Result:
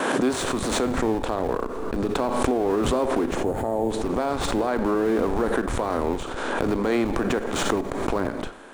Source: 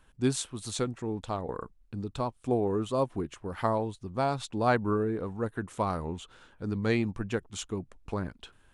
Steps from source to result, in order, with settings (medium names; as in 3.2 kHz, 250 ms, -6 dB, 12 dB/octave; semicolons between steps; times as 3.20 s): spectral levelling over time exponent 0.6; high-pass 240 Hz 24 dB/octave; gate with hold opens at -43 dBFS; in parallel at -6 dB: Schmitt trigger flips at -31 dBFS; on the sum: treble shelf 2.2 kHz -8 dB; peak limiter -19 dBFS, peak gain reduction 8.5 dB; time-frequency box 3.36–3.91 s, 920–6400 Hz -12 dB; Schroeder reverb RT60 0.68 s, combs from 28 ms, DRR 13 dB; swell ahead of each attack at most 25 dB/s; trim +4.5 dB